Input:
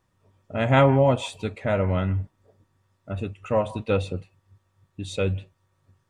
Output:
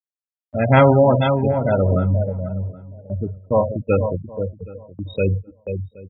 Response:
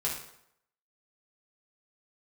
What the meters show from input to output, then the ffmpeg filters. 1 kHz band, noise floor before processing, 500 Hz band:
+5.5 dB, -70 dBFS, +6.0 dB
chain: -filter_complex "[0:a]asplit=2[a][b];[b]aecho=0:1:55|62|152|484|820:0.141|0.237|0.141|0.473|0.119[c];[a][c]amix=inputs=2:normalize=0,afftfilt=real='re*gte(hypot(re,im),0.1)':imag='im*gte(hypot(re,im),0.1)':win_size=1024:overlap=0.75,agate=range=-29dB:threshold=-43dB:ratio=16:detection=peak,asplit=2[d][e];[e]adelay=772,lowpass=f=1.2k:p=1,volume=-20dB,asplit=2[f][g];[g]adelay=772,lowpass=f=1.2k:p=1,volume=0.2[h];[f][h]amix=inputs=2:normalize=0[i];[d][i]amix=inputs=2:normalize=0,acompressor=mode=upward:threshold=-39dB:ratio=2.5,volume=5dB"

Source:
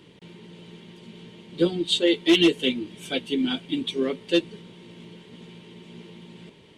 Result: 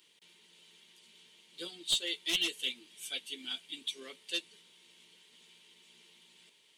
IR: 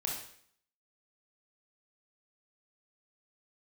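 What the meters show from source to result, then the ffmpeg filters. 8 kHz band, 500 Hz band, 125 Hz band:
0.0 dB, -24.5 dB, under -25 dB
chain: -af "aderivative,aeval=exprs='clip(val(0),-1,0.0631)':c=same"

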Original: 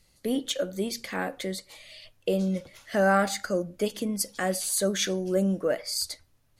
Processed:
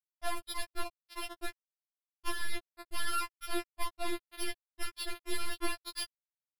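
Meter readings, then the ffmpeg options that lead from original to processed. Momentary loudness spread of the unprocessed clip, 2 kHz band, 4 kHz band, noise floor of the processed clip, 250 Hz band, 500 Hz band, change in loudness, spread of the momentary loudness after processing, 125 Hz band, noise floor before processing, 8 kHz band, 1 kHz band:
10 LU, -8.0 dB, -7.5 dB, under -85 dBFS, -17.0 dB, -18.0 dB, -11.5 dB, 8 LU, under -20 dB, -65 dBFS, -12.0 dB, -8.0 dB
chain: -filter_complex "[0:a]afftfilt=real='re*gte(hypot(re,im),0.178)':imag='im*gte(hypot(re,im),0.178)':win_size=1024:overlap=0.75,acompressor=threshold=-35dB:ratio=10,asplit=2[a][b];[b]adelay=531,lowpass=f=820:p=1,volume=-8dB,asplit=2[c][d];[d]adelay=531,lowpass=f=820:p=1,volume=0.35,asplit=2[e][f];[f]adelay=531,lowpass=f=820:p=1,volume=0.35,asplit=2[g][h];[h]adelay=531,lowpass=f=820:p=1,volume=0.35[i];[a][c][e][g][i]amix=inputs=5:normalize=0,aresample=11025,acrusher=bits=3:dc=4:mix=0:aa=0.000001,aresample=44100,acompressor=mode=upward:threshold=-56dB:ratio=2.5,aeval=exprs='0.0501*(cos(1*acos(clip(val(0)/0.0501,-1,1)))-cos(1*PI/2))+0.00126*(cos(5*acos(clip(val(0)/0.0501,-1,1)))-cos(5*PI/2))+0.000355*(cos(6*acos(clip(val(0)/0.0501,-1,1)))-cos(6*PI/2))+0.01*(cos(8*acos(clip(val(0)/0.0501,-1,1)))-cos(8*PI/2))':c=same,afftfilt=real='re*4*eq(mod(b,16),0)':imag='im*4*eq(mod(b,16),0)':win_size=2048:overlap=0.75,volume=7.5dB"

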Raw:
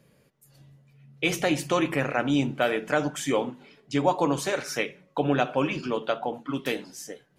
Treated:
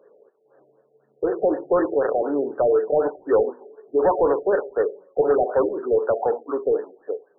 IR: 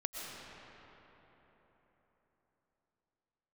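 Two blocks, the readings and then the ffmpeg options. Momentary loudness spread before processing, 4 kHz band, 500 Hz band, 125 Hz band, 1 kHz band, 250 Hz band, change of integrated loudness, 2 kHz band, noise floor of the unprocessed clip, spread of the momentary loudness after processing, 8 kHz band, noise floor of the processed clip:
7 LU, under -40 dB, +9.0 dB, -11.0 dB, +2.5 dB, -1.0 dB, +5.0 dB, -7.5 dB, -64 dBFS, 7 LU, under -40 dB, -63 dBFS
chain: -filter_complex "[0:a]highpass=f=420:t=q:w=4.9,asplit=2[a][b];[b]highpass=f=720:p=1,volume=17dB,asoftclip=type=tanh:threshold=-6.5dB[c];[a][c]amix=inputs=2:normalize=0,lowpass=f=2.2k:p=1,volume=-6dB,afftfilt=real='re*lt(b*sr/1024,760*pow(1900/760,0.5+0.5*sin(2*PI*4*pts/sr)))':imag='im*lt(b*sr/1024,760*pow(1900/760,0.5+0.5*sin(2*PI*4*pts/sr)))':win_size=1024:overlap=0.75,volume=-3.5dB"

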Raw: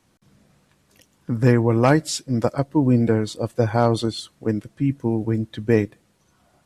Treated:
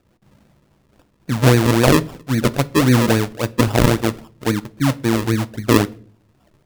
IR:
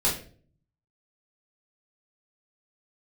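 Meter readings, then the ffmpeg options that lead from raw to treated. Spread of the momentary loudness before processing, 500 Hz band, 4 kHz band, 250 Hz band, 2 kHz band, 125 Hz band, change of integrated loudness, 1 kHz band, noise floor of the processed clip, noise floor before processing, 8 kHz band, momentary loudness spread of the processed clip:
9 LU, +2.0 dB, +8.0 dB, +3.5 dB, +8.0 dB, +4.0 dB, +3.5 dB, +4.0 dB, -60 dBFS, -63 dBFS, +7.5 dB, 9 LU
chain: -filter_complex "[0:a]lowpass=2.2k,acrusher=samples=41:mix=1:aa=0.000001:lfo=1:lforange=41:lforate=3.7,asplit=2[a][b];[1:a]atrim=start_sample=2205[c];[b][c]afir=irnorm=-1:irlink=0,volume=-26dB[d];[a][d]amix=inputs=2:normalize=0,volume=3dB"

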